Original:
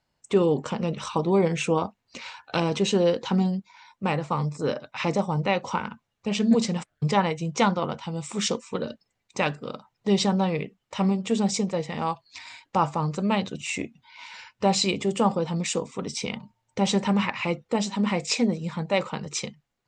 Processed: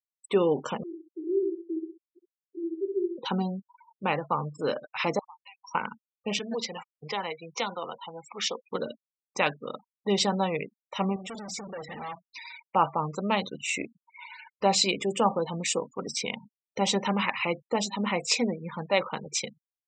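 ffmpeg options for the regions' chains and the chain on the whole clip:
-filter_complex "[0:a]asettb=1/sr,asplit=3[a][b][c];[a]atrim=end=0.834[d];[b]atrim=start=0.83:end=3.18,asetpts=PTS-STARTPTS,afade=t=in:d=0.004:c=qsin,afade=t=out:st=2.346:d=0.004:c=qsin,asuperpass=centerf=350:order=12:qfactor=3.6,aecho=1:1:65|130|195:0.631|0.158|0.0394,atrim=end_sample=103635[e];[c]atrim=start=3.176[f];[d][e]acrossfade=d=0.004:c1=hsin:c2=qsin[g];[g][f]acrossfade=d=0.004:c1=qsin:c2=hsin,asettb=1/sr,asplit=3[h][i][j];[h]atrim=end=5.194[k];[i]atrim=start=5.19:end=5.75,asetpts=PTS-STARTPTS,afade=t=in:d=0.004:c=qsin,afade=t=out:st=0.556:d=0.004:c=qsin,highpass=f=1.1k:w=0.5412,highpass=f=1.1k:w=1.3066,equalizer=f=1.6k:t=o:w=1.3:g=-10.5,acompressor=threshold=-41dB:ratio=12:attack=3.2:release=140:knee=1:detection=peak[l];[j]atrim=start=5.746[m];[k][l]acrossfade=d=0.004:c1=hsin:c2=qsin[n];[n][m]acrossfade=d=0.004:c1=qsin:c2=hsin,asettb=1/sr,asplit=3[o][p][q];[o]atrim=end=6.394[r];[p]atrim=start=6.39:end=8.65,asetpts=PTS-STARTPTS,afade=t=in:d=0.004:c=qsin,afade=t=out:st=2.256:d=0.004:c=qsin,acrossover=split=450 6200:gain=0.224 1 0.112[s][t][u];[s][t][u]amix=inputs=3:normalize=0,bandreject=f=590:w=15,acrossover=split=470|3000[v][w][x];[w]acompressor=threshold=-33dB:ratio=4:attack=3.2:release=140:knee=2.83:detection=peak[y];[v][y][x]amix=inputs=3:normalize=0[z];[q]atrim=start=8.646[aa];[r][z]acrossfade=d=0.004:c1=hsin:c2=qsin[ab];[ab][aa]acrossfade=d=0.004:c1=qsin:c2=hsin,asettb=1/sr,asplit=3[ac][ad][ae];[ac]atrim=end=11.164[af];[ad]atrim=start=11.16:end=12.64,asetpts=PTS-STARTPTS,afade=t=in:d=0.004:c=qsin,afade=t=out:st=1.476:d=0.004:c=qsin,bandreject=f=60:t=h:w=6,bandreject=f=120:t=h:w=6,bandreject=f=180:t=h:w=6,acontrast=57,aeval=exprs='(tanh(50.1*val(0)+0.75)-tanh(0.75))/50.1':c=same[ag];[ae]atrim=start=12.636[ah];[af][ag]acrossfade=d=0.004:c1=hsin:c2=qsin[ai];[ai][ah]acrossfade=d=0.004:c1=qsin:c2=hsin,afftfilt=real='re*gte(hypot(re,im),0.0158)':imag='im*gte(hypot(re,im),0.0158)':win_size=1024:overlap=0.75,highpass=f=420:p=1,volume=1dB"

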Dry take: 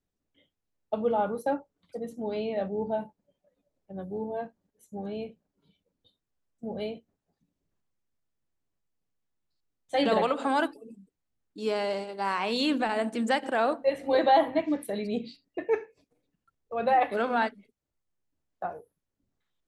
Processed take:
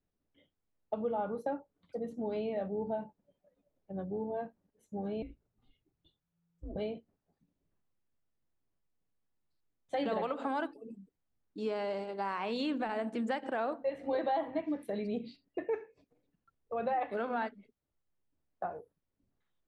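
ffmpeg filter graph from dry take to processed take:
-filter_complex "[0:a]asettb=1/sr,asplit=3[a][b][c];[a]atrim=end=5.224[d];[b]atrim=start=5.22:end=6.76,asetpts=PTS-STARTPTS,afade=t=in:d=0.004:c=qsin,afade=t=out:st=1.536:d=0.004:c=qsin,acompressor=threshold=-40dB:ratio=4:attack=3.2:release=140:knee=1:detection=peak,afreqshift=-170[e];[c]atrim=start=6.756[f];[d][e]acrossfade=d=0.004:c1=hsin:c2=qsin[g];[g][f]acrossfade=d=0.004:c1=qsin:c2=hsin,aemphasis=mode=reproduction:type=75kf,acompressor=threshold=-34dB:ratio=2.5"

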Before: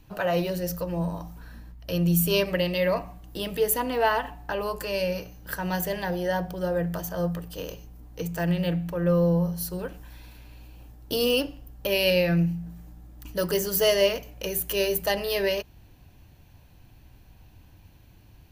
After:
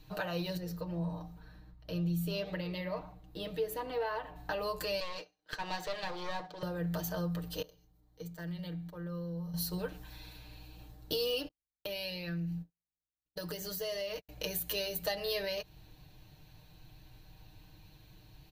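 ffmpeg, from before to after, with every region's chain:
-filter_complex "[0:a]asettb=1/sr,asplit=3[a][b][c];[a]atrim=end=0.574[d];[b]atrim=start=0.57:end=4.36,asetpts=PTS-STARTPTS,afade=t=in:d=0.004:c=qsin,afade=t=out:st=3.786:d=0.004:c=qsin,highshelf=f=2.8k:g=-10,flanger=delay=6.1:depth=5.9:regen=90:speed=2:shape=triangular[e];[c]atrim=start=4.356[f];[d][e]acrossfade=d=0.004:c1=hsin:c2=qsin[g];[g][f]acrossfade=d=0.004:c1=qsin:c2=hsin,asettb=1/sr,asplit=3[h][i][j];[h]atrim=end=5.004[k];[i]atrim=start=5:end=6.63,asetpts=PTS-STARTPTS,afade=t=in:d=0.004:c=qsin,afade=t=out:st=1.626:d=0.004:c=qsin,agate=range=-33dB:threshold=-33dB:ratio=3:release=100:detection=peak,acrossover=split=300 6800:gain=0.0631 1 0.0631[l][m][n];[l][m][n]amix=inputs=3:normalize=0,aeval=exprs='clip(val(0),-1,0.0106)':c=same[o];[j]atrim=start=6.626[p];[k][o]acrossfade=d=0.004:c1=hsin:c2=qsin[q];[q][p]acrossfade=d=0.004:c1=qsin:c2=hsin,asettb=1/sr,asplit=3[r][s][t];[r]atrim=end=7.624[u];[s]atrim=start=7.62:end=9.54,asetpts=PTS-STARTPTS,afade=t=in:d=0.004:c=qsin,afade=t=out:st=1.916:d=0.004:c=qsin,bandreject=f=2.6k:w=6.8,acompressor=threshold=-43dB:ratio=2.5:attack=3.2:release=140:knee=1:detection=peak,agate=range=-15dB:threshold=-42dB:ratio=16:release=100:detection=peak[v];[t]atrim=start=9.536[w];[u][v]acrossfade=d=0.004:c1=hsin:c2=qsin[x];[x][w]acrossfade=d=0.004:c1=qsin:c2=hsin,asettb=1/sr,asplit=3[y][z][aa];[y]atrim=end=11.484[ab];[z]atrim=start=11.48:end=14.29,asetpts=PTS-STARTPTS,afade=t=in:d=0.004:c=qsin,afade=t=out:st=2.806:d=0.004:c=qsin,agate=range=-56dB:threshold=-34dB:ratio=16:release=100:detection=peak,acompressor=threshold=-34dB:ratio=5:attack=3.2:release=140:knee=1:detection=peak[ac];[aa]atrim=start=14.286[ad];[ab][ac]acrossfade=d=0.004:c1=hsin:c2=qsin[ae];[ae][ad]acrossfade=d=0.004:c1=qsin:c2=hsin,equalizer=f=250:t=o:w=0.33:g=-6,equalizer=f=4k:t=o:w=0.33:g=10,equalizer=f=10k:t=o:w=0.33:g=-3,acompressor=threshold=-30dB:ratio=4,aecho=1:1:6.5:0.65,volume=-4dB"

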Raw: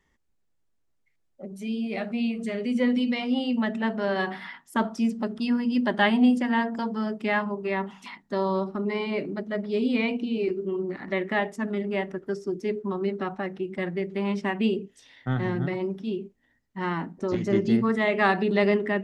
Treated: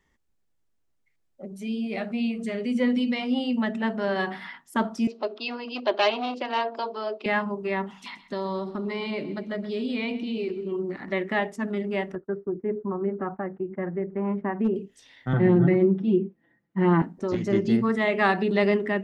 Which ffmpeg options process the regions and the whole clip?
-filter_complex "[0:a]asettb=1/sr,asplit=3[a][b][c];[a]atrim=end=5.074[d];[b]atrim=start=5.07:end=7.26,asetpts=PTS-STARTPTS,afade=t=in:d=0.004:c=qsin,afade=t=out:st=2.186:d=0.004:c=qsin,asoftclip=type=hard:threshold=-19dB,highpass=f=360:w=0.5412,highpass=f=360:w=1.3066,equalizer=f=380:t=q:w=4:g=5,equalizer=f=630:t=q:w=4:g=7,equalizer=f=1.1k:t=q:w=4:g=4,equalizer=f=1.8k:t=q:w=4:g=-8,equalizer=f=2.6k:t=q:w=4:g=7,equalizer=f=4.1k:t=q:w=4:g=9,lowpass=f=5.2k:w=0.5412,lowpass=f=5.2k:w=1.3066[e];[c]atrim=start=7.256[f];[d][e]acrossfade=d=0.004:c1=hsin:c2=qsin[g];[g][f]acrossfade=d=0.004:c1=qsin:c2=hsin,asettb=1/sr,asplit=3[h][i][j];[h]atrim=end=7.974[k];[i]atrim=start=7.97:end=10.72,asetpts=PTS-STARTPTS,afade=t=in:d=0.004:c=qsin,afade=t=out:st=2.746:d=0.004:c=qsin,equalizer=f=3.8k:t=o:w=0.79:g=5.5,acompressor=threshold=-27dB:ratio=2.5:attack=3.2:release=140:knee=1:detection=peak,aecho=1:1:129|258|387|516:0.158|0.0761|0.0365|0.0175,atrim=end_sample=121275[l];[j]atrim=start=10.716[m];[k][l]acrossfade=d=0.004:c1=hsin:c2=qsin[n];[n][m]acrossfade=d=0.004:c1=qsin:c2=hsin,asettb=1/sr,asplit=3[o][p][q];[o]atrim=end=12.154[r];[p]atrim=start=12.15:end=14.76,asetpts=PTS-STARTPTS,afade=t=in:d=0.004:c=qsin,afade=t=out:st=2.606:d=0.004:c=qsin,lowpass=f=1.6k:w=0.5412,lowpass=f=1.6k:w=1.3066,agate=range=-33dB:threshold=-37dB:ratio=3:release=100:detection=peak,asoftclip=type=hard:threshold=-17dB[s];[q]atrim=start=14.756[t];[r][s]acrossfade=d=0.004:c1=hsin:c2=qsin[u];[u][t]acrossfade=d=0.004:c1=qsin:c2=hsin,asettb=1/sr,asplit=3[v][w][x];[v]atrim=end=15.334[y];[w]atrim=start=15.33:end=17.02,asetpts=PTS-STARTPTS,afade=t=in:d=0.004:c=qsin,afade=t=out:st=1.686:d=0.004:c=qsin,highpass=200,lowpass=2.3k,lowshelf=f=370:g=12,aecho=1:1:5.9:0.86,atrim=end_sample=74529[z];[x]atrim=start=17.016[aa];[y][z]acrossfade=d=0.004:c1=hsin:c2=qsin[ab];[ab][aa]acrossfade=d=0.004:c1=qsin:c2=hsin"

